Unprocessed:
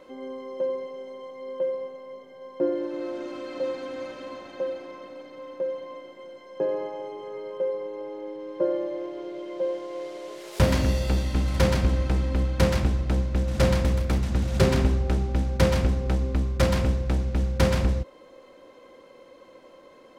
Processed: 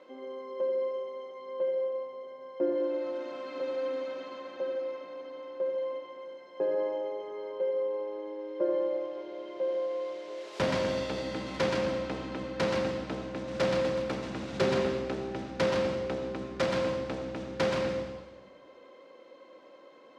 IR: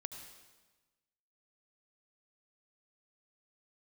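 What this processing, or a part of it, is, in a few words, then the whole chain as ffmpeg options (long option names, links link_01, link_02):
supermarket ceiling speaker: -filter_complex "[0:a]highpass=250,lowpass=5200[link_01];[1:a]atrim=start_sample=2205[link_02];[link_01][link_02]afir=irnorm=-1:irlink=0"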